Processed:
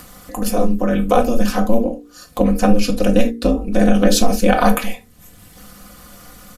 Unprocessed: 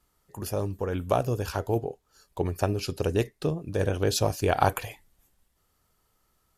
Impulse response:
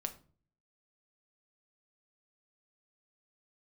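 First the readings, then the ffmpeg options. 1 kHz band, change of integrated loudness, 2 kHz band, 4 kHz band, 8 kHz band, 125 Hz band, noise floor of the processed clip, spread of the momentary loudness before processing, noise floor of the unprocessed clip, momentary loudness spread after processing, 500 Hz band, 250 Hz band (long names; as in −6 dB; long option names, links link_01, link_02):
+9.5 dB, +11.0 dB, +10.5 dB, +10.0 dB, +11.0 dB, +4.0 dB, −47 dBFS, 13 LU, −72 dBFS, 11 LU, +9.5 dB, +17.0 dB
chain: -filter_complex "[0:a]aeval=exprs='val(0)*sin(2*PI*110*n/s)':channel_layout=same,equalizer=frequency=900:width_type=o:width=0.21:gain=-6.5,aecho=1:1:4:0.8,asplit=2[link_01][link_02];[link_02]acompressor=mode=upward:threshold=-27dB:ratio=2.5,volume=0.5dB[link_03];[link_01][link_03]amix=inputs=2:normalize=0,bandreject=frequency=58.26:width_type=h:width=4,bandreject=frequency=116.52:width_type=h:width=4,bandreject=frequency=174.78:width_type=h:width=4,bandreject=frequency=233.04:width_type=h:width=4,bandreject=frequency=291.3:width_type=h:width=4,bandreject=frequency=349.56:width_type=h:width=4,bandreject=frequency=407.82:width_type=h:width=4,bandreject=frequency=466.08:width_type=h:width=4[link_04];[1:a]atrim=start_sample=2205,atrim=end_sample=3969[link_05];[link_04][link_05]afir=irnorm=-1:irlink=0,alimiter=level_in=7.5dB:limit=-1dB:release=50:level=0:latency=1,volume=-1dB"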